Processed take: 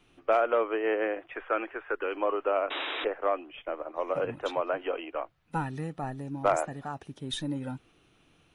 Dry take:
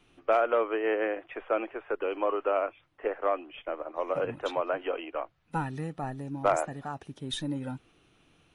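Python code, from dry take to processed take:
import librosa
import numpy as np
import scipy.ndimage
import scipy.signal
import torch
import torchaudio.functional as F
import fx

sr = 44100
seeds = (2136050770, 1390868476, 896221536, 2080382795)

y = fx.graphic_eq_15(x, sr, hz=(160, 630, 1600), db=(-10, -4, 7), at=(1.35, 2.15))
y = fx.spec_paint(y, sr, seeds[0], shape='noise', start_s=2.7, length_s=0.35, low_hz=260.0, high_hz=3900.0, level_db=-34.0)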